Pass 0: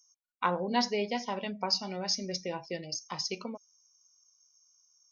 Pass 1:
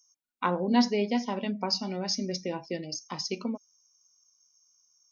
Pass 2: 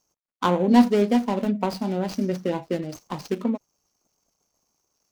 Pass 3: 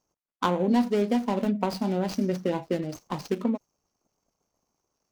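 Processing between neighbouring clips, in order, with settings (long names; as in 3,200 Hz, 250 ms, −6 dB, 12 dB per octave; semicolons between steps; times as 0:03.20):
parametric band 260 Hz +10.5 dB 0.9 octaves
running median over 25 samples; level +8 dB
downward compressor 3 to 1, threshold −21 dBFS, peak gain reduction 9 dB; one half of a high-frequency compander decoder only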